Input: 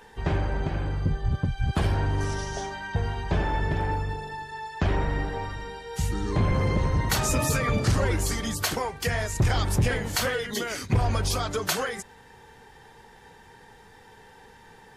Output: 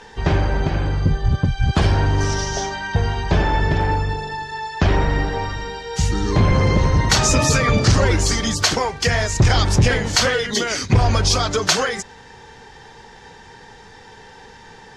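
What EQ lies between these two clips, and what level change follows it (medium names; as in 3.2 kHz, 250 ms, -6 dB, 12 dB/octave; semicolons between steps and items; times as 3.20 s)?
resonant low-pass 5.9 kHz, resonance Q 1.8; +8.0 dB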